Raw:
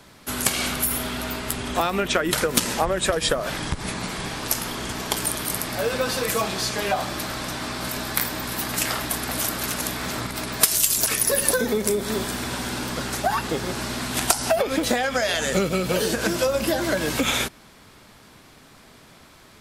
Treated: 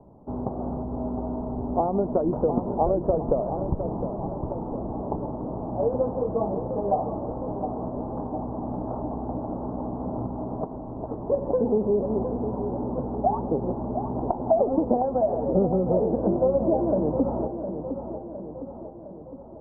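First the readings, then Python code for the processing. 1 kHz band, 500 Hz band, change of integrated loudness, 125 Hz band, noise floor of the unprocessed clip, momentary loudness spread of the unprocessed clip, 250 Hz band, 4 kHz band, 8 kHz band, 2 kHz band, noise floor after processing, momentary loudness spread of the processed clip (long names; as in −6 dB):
−1.5 dB, +1.5 dB, −3.5 dB, +1.0 dB, −50 dBFS, 9 LU, +2.0 dB, below −40 dB, below −40 dB, below −35 dB, −40 dBFS, 11 LU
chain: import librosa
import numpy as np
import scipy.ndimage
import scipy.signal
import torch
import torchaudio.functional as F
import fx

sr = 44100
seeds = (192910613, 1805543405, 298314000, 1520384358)

y = scipy.signal.sosfilt(scipy.signal.butter(8, 900.0, 'lowpass', fs=sr, output='sos'), x)
y = fx.echo_feedback(y, sr, ms=710, feedback_pct=55, wet_db=-9)
y = y * 10.0 ** (1.0 / 20.0)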